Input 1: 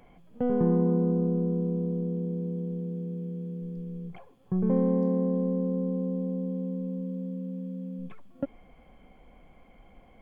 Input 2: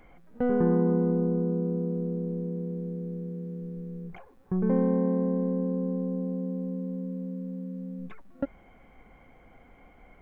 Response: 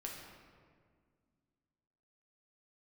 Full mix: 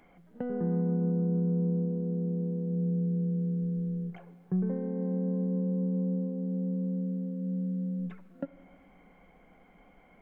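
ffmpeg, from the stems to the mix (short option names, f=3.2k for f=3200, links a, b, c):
-filter_complex "[0:a]acompressor=threshold=-28dB:ratio=6,flanger=delay=2.5:depth=6.5:regen=-64:speed=0.22:shape=sinusoidal,volume=-6dB[a];[1:a]highpass=230,acompressor=threshold=-35dB:ratio=3,volume=-1,volume=-6dB,asplit=2[b][c];[c]volume=-6.5dB[d];[2:a]atrim=start_sample=2205[e];[d][e]afir=irnorm=-1:irlink=0[f];[a][b][f]amix=inputs=3:normalize=0,equalizer=f=180:w=4.3:g=11.5"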